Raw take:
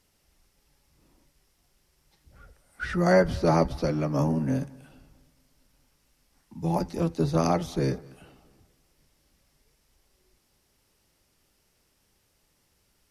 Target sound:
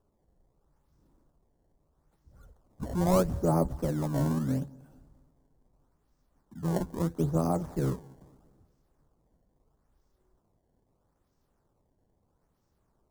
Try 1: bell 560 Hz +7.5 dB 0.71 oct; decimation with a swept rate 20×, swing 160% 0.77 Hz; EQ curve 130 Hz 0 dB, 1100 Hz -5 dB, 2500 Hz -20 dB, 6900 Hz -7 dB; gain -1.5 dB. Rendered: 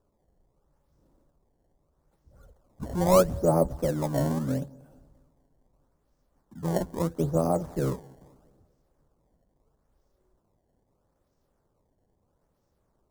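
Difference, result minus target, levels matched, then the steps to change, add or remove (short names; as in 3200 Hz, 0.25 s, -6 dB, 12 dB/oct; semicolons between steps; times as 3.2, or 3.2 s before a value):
500 Hz band +3.0 dB
remove: bell 560 Hz +7.5 dB 0.71 oct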